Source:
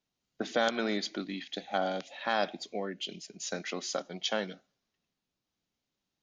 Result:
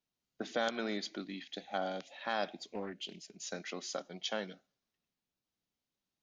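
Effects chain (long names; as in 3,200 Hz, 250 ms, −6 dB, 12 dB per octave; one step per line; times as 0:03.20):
0:02.61–0:03.37: highs frequency-modulated by the lows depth 0.26 ms
level −5.5 dB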